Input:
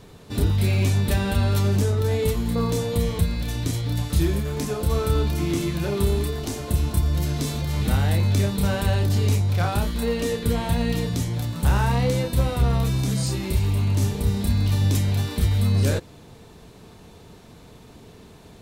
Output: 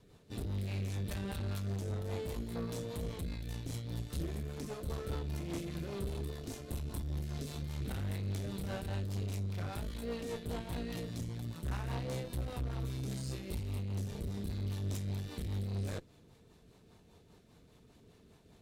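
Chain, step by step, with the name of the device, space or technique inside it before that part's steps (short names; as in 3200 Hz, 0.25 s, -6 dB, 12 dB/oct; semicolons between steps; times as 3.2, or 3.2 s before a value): overdriven rotary cabinet (tube stage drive 24 dB, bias 0.8; rotary speaker horn 5 Hz); gain -8.5 dB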